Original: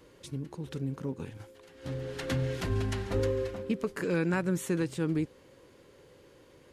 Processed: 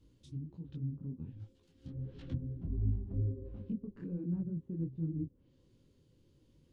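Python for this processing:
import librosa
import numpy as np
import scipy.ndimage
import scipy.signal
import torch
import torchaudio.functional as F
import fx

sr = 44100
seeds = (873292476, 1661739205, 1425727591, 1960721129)

y = fx.band_shelf(x, sr, hz=940.0, db=-13.5, octaves=2.9)
y = fx.env_lowpass_down(y, sr, base_hz=510.0, full_db=-32.0)
y = fx.tilt_eq(y, sr, slope=-2.0)
y = fx.detune_double(y, sr, cents=48)
y = y * 10.0 ** (-5.5 / 20.0)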